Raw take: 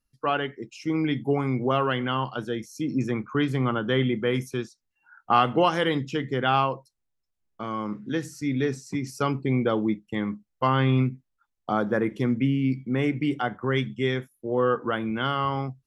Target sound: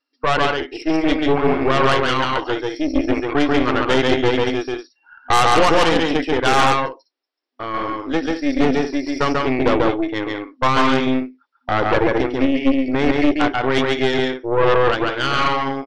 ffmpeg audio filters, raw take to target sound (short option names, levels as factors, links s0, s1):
-af "aecho=1:1:139.9|198.3:0.794|0.316,afftfilt=real='re*between(b*sr/4096,250,5700)':imag='im*between(b*sr/4096,250,5700)':win_size=4096:overlap=0.75,aeval=exprs='0.447*(cos(1*acos(clip(val(0)/0.447,-1,1)))-cos(1*PI/2))+0.126*(cos(5*acos(clip(val(0)/0.447,-1,1)))-cos(5*PI/2))+0.126*(cos(8*acos(clip(val(0)/0.447,-1,1)))-cos(8*PI/2))':c=same"